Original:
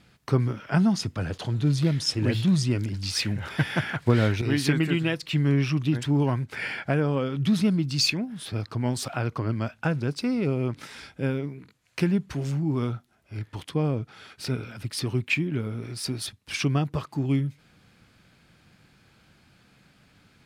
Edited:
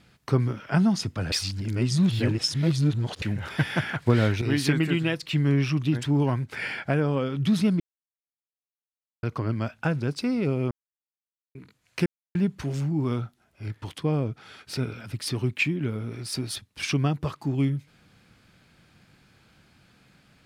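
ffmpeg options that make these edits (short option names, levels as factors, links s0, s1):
-filter_complex "[0:a]asplit=8[s0][s1][s2][s3][s4][s5][s6][s7];[s0]atrim=end=1.322[s8];[s1]atrim=start=1.318:end=3.222,asetpts=PTS-STARTPTS,areverse[s9];[s2]atrim=start=3.218:end=7.8,asetpts=PTS-STARTPTS,afade=t=out:st=4.578:d=0.004:c=hsin[s10];[s3]atrim=start=7.8:end=9.23,asetpts=PTS-STARTPTS,volume=0[s11];[s4]atrim=start=9.23:end=10.71,asetpts=PTS-STARTPTS,afade=t=in:d=0.004:c=hsin,afade=t=out:st=1.476:d=0.004:c=hsin[s12];[s5]atrim=start=10.71:end=11.55,asetpts=PTS-STARTPTS,volume=0[s13];[s6]atrim=start=11.55:end=12.06,asetpts=PTS-STARTPTS,afade=t=in:d=0.004:c=hsin,afade=t=out:st=0.506:d=0.004:c=hsin,apad=pad_dur=0.29[s14];[s7]atrim=start=12.06,asetpts=PTS-STARTPTS,afade=t=in:d=0.004:c=hsin[s15];[s8][s9]acrossfade=d=0.004:c1=hsin:c2=hsin[s16];[s10][s11][s12][s13][s14][s15]concat=n=6:v=0:a=1[s17];[s16][s17]acrossfade=d=0.004:c1=hsin:c2=hsin"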